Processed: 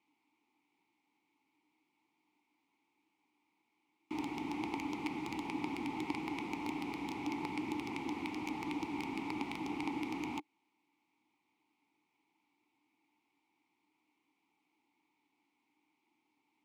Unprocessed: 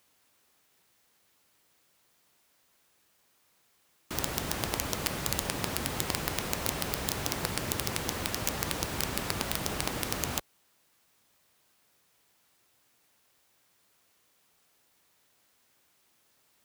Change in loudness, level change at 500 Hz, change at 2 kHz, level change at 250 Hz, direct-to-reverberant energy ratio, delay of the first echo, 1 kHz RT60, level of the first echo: -8.0 dB, -9.0 dB, -7.5 dB, +1.5 dB, none, none, none, none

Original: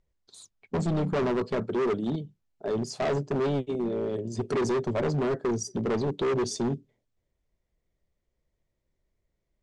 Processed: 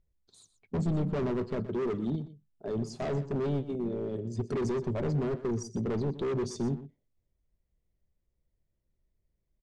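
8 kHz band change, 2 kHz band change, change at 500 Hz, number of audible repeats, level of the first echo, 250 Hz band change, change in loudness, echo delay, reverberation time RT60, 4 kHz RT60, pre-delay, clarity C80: -9.0 dB, -8.5 dB, -5.0 dB, 1, -14.5 dB, -2.5 dB, -3.5 dB, 0.122 s, none, none, none, none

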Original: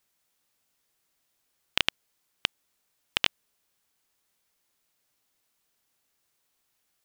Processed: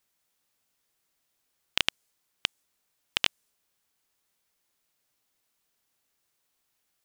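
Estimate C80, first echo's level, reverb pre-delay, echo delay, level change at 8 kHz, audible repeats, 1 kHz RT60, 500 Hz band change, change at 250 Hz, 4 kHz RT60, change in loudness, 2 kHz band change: none, none, none, none, +2.0 dB, none, none, -2.0 dB, -2.0 dB, none, -0.5 dB, -1.0 dB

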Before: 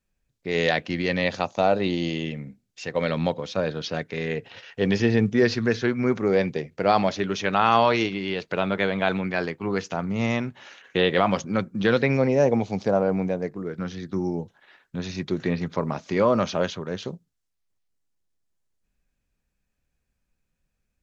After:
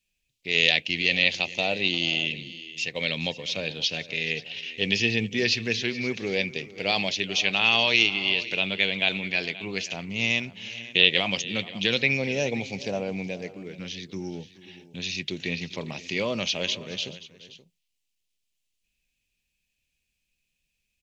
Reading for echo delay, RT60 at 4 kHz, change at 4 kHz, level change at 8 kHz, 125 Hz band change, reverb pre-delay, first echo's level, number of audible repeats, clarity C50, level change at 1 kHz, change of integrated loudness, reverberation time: 0.426 s, none, +10.0 dB, n/a, -7.5 dB, none, -18.5 dB, 2, none, -11.0 dB, -0.5 dB, none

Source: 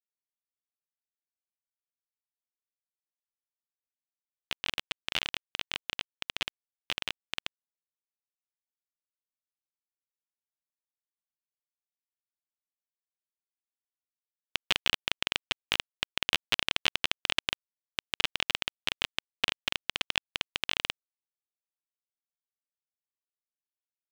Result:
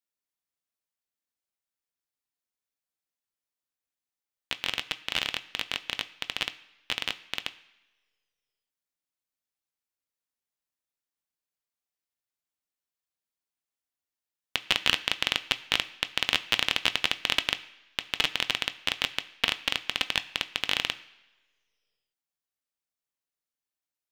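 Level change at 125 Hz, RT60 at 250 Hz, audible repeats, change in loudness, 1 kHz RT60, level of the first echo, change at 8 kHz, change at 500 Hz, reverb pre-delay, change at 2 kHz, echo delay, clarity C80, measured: +3.0 dB, 1.0 s, none, +3.5 dB, 1.1 s, none, +3.5 dB, +3.0 dB, 3 ms, +3.5 dB, none, 19.0 dB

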